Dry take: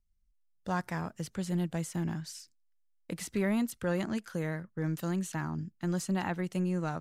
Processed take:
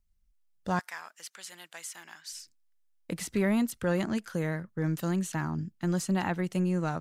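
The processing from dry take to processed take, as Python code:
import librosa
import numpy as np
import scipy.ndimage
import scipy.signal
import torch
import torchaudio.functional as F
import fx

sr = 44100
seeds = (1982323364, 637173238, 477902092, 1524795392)

y = fx.highpass(x, sr, hz=1400.0, slope=12, at=(0.79, 2.33))
y = y * 10.0 ** (3.0 / 20.0)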